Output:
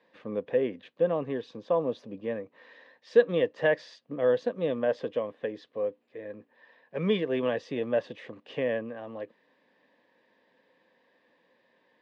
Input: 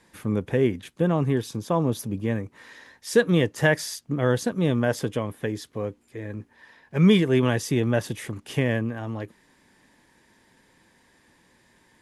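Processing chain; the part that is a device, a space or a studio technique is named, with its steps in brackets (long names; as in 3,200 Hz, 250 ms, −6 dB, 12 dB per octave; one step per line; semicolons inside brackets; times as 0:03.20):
phone earpiece (loudspeaker in its box 350–3,400 Hz, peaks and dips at 360 Hz −7 dB, 520 Hz +7 dB, 860 Hz −6 dB, 1,400 Hz −10 dB, 2,200 Hz −7 dB, 3,200 Hz −4 dB)
level −2 dB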